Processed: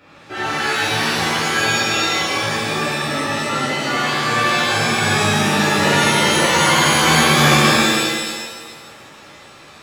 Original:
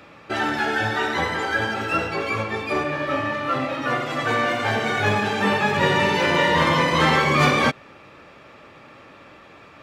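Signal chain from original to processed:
reverb with rising layers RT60 1.4 s, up +7 semitones, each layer −2 dB, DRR −7.5 dB
level −6.5 dB

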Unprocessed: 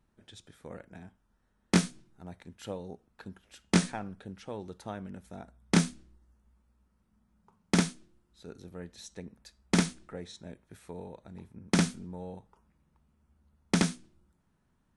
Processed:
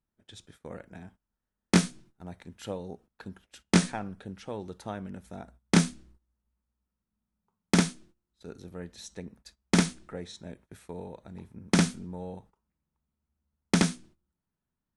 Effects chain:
noise gate −56 dBFS, range −17 dB
level +2.5 dB

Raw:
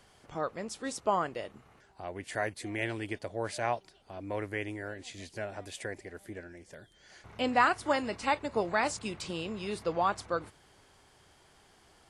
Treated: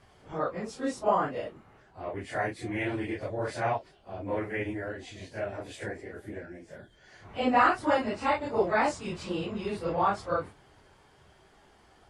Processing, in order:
random phases in long frames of 100 ms
high-shelf EQ 3,500 Hz −11 dB
level +4 dB

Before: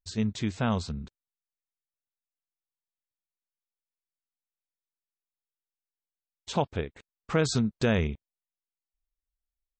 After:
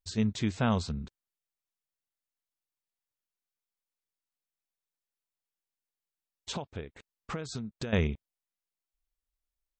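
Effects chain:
0:06.51–0:07.93: downward compressor 10 to 1, threshold −34 dBFS, peak gain reduction 15 dB

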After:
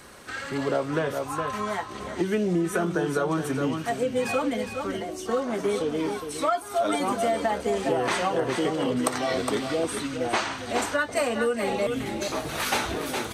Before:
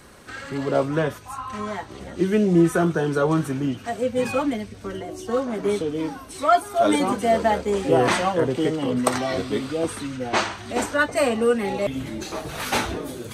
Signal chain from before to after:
low-shelf EQ 300 Hz −6.5 dB
single-tap delay 412 ms −9.5 dB
downward compressor 10 to 1, threshold −23 dBFS, peak gain reduction 11 dB
level +2 dB

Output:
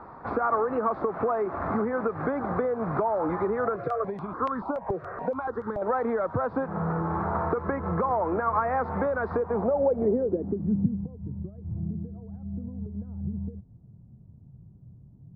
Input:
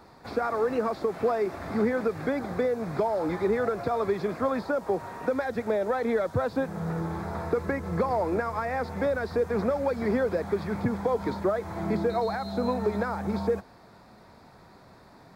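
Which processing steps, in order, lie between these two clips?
downward compressor, threshold −30 dBFS, peak gain reduction 9.5 dB
low-pass filter sweep 1,200 Hz → 130 Hz, 0:09.35–0:11.15
0:03.76–0:05.82: step-sequenced phaser 7 Hz 240–2,500 Hz
level +4.5 dB

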